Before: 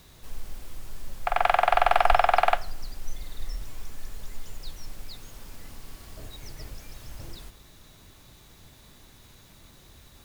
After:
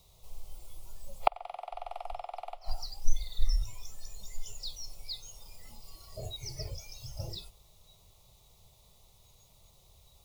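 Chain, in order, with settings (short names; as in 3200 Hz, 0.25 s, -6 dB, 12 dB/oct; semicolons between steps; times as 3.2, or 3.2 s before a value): spectral noise reduction 15 dB; fixed phaser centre 670 Hz, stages 4; flipped gate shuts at -15 dBFS, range -27 dB; gain +8 dB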